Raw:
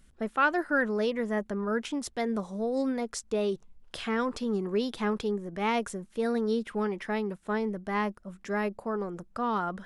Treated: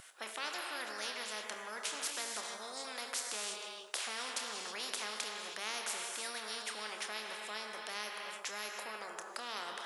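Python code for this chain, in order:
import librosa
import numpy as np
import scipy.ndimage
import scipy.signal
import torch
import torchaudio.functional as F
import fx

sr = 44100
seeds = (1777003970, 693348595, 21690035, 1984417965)

p1 = scipy.signal.sosfilt(scipy.signal.butter(4, 650.0, 'highpass', fs=sr, output='sos'), x)
p2 = fx.doubler(p1, sr, ms=28.0, db=-10.5)
p3 = p2 + fx.echo_feedback(p2, sr, ms=157, feedback_pct=50, wet_db=-23, dry=0)
p4 = fx.rev_gated(p3, sr, seeds[0], gate_ms=350, shape='flat', drr_db=8.5)
p5 = fx.spectral_comp(p4, sr, ratio=4.0)
y = p5 * librosa.db_to_amplitude(-5.0)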